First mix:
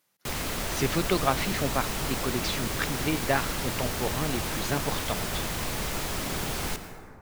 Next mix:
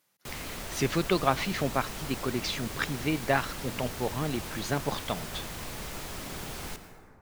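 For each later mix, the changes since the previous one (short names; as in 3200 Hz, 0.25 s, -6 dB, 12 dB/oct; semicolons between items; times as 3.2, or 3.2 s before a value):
background -7.5 dB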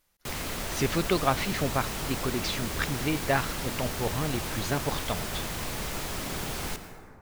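speech: remove HPF 120 Hz 24 dB/oct; background +5.0 dB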